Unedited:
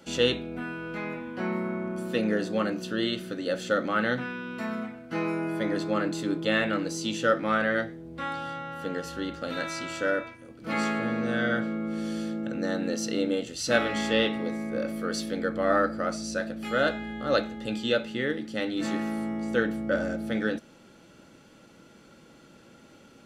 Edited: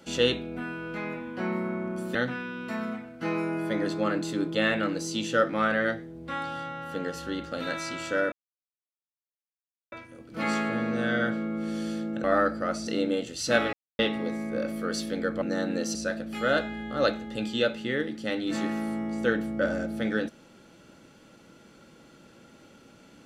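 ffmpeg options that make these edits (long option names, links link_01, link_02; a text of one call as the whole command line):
ffmpeg -i in.wav -filter_complex "[0:a]asplit=9[link_01][link_02][link_03][link_04][link_05][link_06][link_07][link_08][link_09];[link_01]atrim=end=2.152[link_10];[link_02]atrim=start=4.048:end=10.22,asetpts=PTS-STARTPTS,afade=type=out:start_time=6.168:duration=0.004:curve=hsin,apad=pad_dur=1.6[link_11];[link_03]atrim=start=10.22:end=12.542,asetpts=PTS-STARTPTS,afade=type=in:duration=0.004:curve=hsin[link_12];[link_04]atrim=start=15.618:end=16.252[link_13];[link_05]atrim=start=13.068:end=13.93,asetpts=PTS-STARTPTS,afade=type=out:start_time=0.858:duration=0.004:curve=hsin[link_14];[link_06]atrim=start=13.93:end=14.19,asetpts=PTS-STARTPTS,volume=0[link_15];[link_07]atrim=start=14.19:end=15.622,asetpts=PTS-STARTPTS,afade=type=in:duration=0.004:curve=hsin[link_16];[link_08]atrim=start=12.538:end=13.072[link_17];[link_09]atrim=start=16.248[link_18];[link_11][link_12]concat=n=2:v=0:a=1[link_19];[link_10][link_19]acrossfade=duration=0.004:curve1=hsin:curve2=hsin[link_20];[link_20][link_13]acrossfade=duration=0.004:curve1=hsin:curve2=hsin[link_21];[link_14][link_15][link_16]concat=n=3:v=0:a=1[link_22];[link_21][link_22]acrossfade=duration=0.004:curve1=hsin:curve2=hsin[link_23];[link_23][link_17]acrossfade=duration=0.004:curve1=hsin:curve2=hsin[link_24];[link_24][link_18]acrossfade=duration=0.004:curve1=hsin:curve2=hsin" out.wav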